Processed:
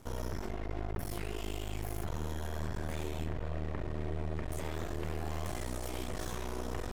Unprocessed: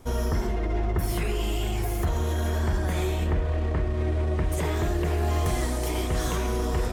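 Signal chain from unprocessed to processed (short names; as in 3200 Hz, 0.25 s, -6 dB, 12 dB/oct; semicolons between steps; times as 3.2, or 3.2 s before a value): limiter -25 dBFS, peak gain reduction 8.5 dB; HPF 47 Hz 12 dB/oct; half-wave rectifier; gain -1 dB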